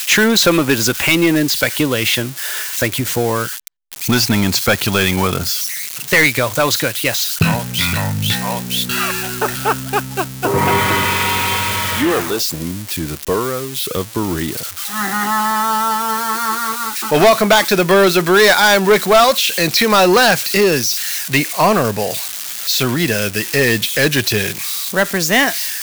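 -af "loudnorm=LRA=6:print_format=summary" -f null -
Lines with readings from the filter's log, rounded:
Input Integrated:    -15.2 LUFS
Input True Peak:      -3.3 dBTP
Input LRA:             6.2 LU
Input Threshold:     -25.2 LUFS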